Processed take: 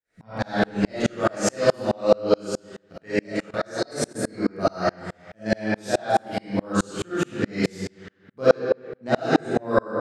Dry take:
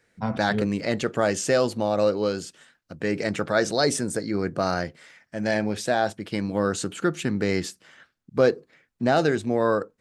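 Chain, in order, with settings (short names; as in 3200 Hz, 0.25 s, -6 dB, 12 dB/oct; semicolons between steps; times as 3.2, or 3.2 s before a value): digital reverb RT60 1.1 s, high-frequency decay 0.75×, pre-delay 10 ms, DRR -10 dB; 3.19–4.19 level quantiser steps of 18 dB; dB-ramp tremolo swelling 4.7 Hz, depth 35 dB; gain -1 dB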